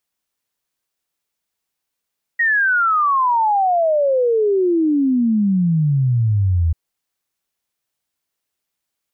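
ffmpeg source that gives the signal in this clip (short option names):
-f lavfi -i "aevalsrc='0.224*clip(min(t,4.34-t)/0.01,0,1)*sin(2*PI*1900*4.34/log(79/1900)*(exp(log(79/1900)*t/4.34)-1))':d=4.34:s=44100"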